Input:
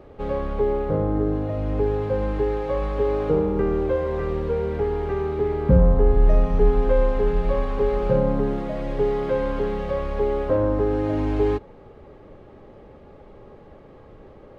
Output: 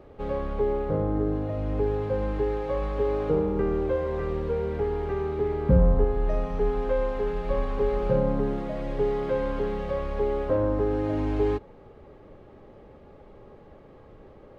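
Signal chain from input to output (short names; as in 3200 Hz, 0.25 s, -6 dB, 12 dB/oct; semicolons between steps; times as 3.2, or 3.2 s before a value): 6.04–7.5 low shelf 250 Hz -7 dB; gain -3.5 dB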